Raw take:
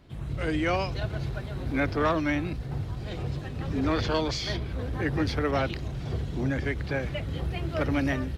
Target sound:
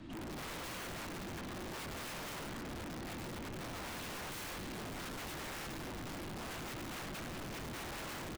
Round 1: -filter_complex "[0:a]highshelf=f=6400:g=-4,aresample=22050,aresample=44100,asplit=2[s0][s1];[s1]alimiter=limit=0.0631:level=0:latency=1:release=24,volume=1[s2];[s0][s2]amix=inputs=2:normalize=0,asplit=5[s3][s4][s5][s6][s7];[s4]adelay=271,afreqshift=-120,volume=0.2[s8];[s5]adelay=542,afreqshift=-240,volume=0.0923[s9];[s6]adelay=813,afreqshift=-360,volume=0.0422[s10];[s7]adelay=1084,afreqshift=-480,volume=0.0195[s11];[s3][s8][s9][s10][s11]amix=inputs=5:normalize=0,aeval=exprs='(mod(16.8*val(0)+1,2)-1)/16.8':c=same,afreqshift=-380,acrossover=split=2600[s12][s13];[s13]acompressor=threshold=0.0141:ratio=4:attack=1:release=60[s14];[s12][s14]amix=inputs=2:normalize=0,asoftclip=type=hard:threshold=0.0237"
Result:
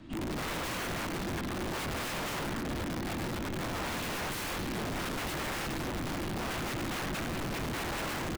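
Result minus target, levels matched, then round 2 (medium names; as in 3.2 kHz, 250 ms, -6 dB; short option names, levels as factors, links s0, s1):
hard clipper: distortion -4 dB
-filter_complex "[0:a]highshelf=f=6400:g=-4,aresample=22050,aresample=44100,asplit=2[s0][s1];[s1]alimiter=limit=0.0631:level=0:latency=1:release=24,volume=1[s2];[s0][s2]amix=inputs=2:normalize=0,asplit=5[s3][s4][s5][s6][s7];[s4]adelay=271,afreqshift=-120,volume=0.2[s8];[s5]adelay=542,afreqshift=-240,volume=0.0923[s9];[s6]adelay=813,afreqshift=-360,volume=0.0422[s10];[s7]adelay=1084,afreqshift=-480,volume=0.0195[s11];[s3][s8][s9][s10][s11]amix=inputs=5:normalize=0,aeval=exprs='(mod(16.8*val(0)+1,2)-1)/16.8':c=same,afreqshift=-380,acrossover=split=2600[s12][s13];[s13]acompressor=threshold=0.0141:ratio=4:attack=1:release=60[s14];[s12][s14]amix=inputs=2:normalize=0,asoftclip=type=hard:threshold=0.00708"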